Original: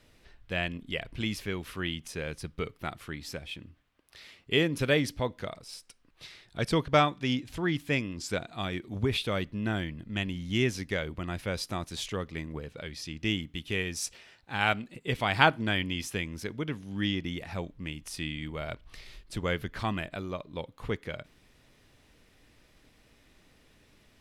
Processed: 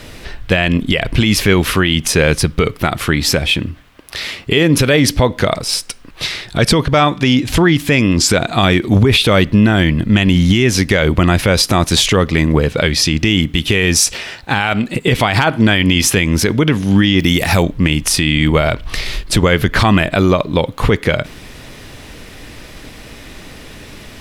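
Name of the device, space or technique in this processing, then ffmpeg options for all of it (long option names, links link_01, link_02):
loud club master: -filter_complex "[0:a]asettb=1/sr,asplit=3[link_01][link_02][link_03];[link_01]atrim=end=17.194[link_04];[link_02]atrim=start=17.19:end=17.63,asetpts=PTS-STARTPTS,afade=type=in:duration=0.004:curve=qsin,afade=type=out:start_time=0.436:duration=0.004:curve=qsin,aemphasis=mode=production:type=50fm[link_05];[link_03]atrim=start=17.626[link_06];[link_04][link_05]acrossfade=duration=0.004:curve1=hsin:curve2=qsin[link_07];[link_07][link_06]acrossfade=duration=0.004:curve1=qsin:curve2=hsin,acompressor=threshold=-33dB:ratio=2,asoftclip=type=hard:threshold=-16dB,alimiter=level_in=28dB:limit=-1dB:release=50:level=0:latency=1,volume=-1dB"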